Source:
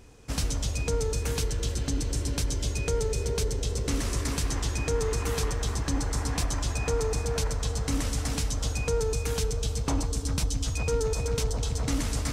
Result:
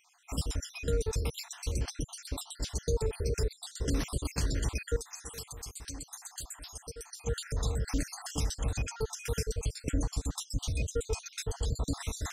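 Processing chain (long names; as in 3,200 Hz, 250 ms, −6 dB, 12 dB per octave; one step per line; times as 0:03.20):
time-frequency cells dropped at random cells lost 61%
0:04.96–0:07.27: first-order pre-emphasis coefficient 0.8
level −1.5 dB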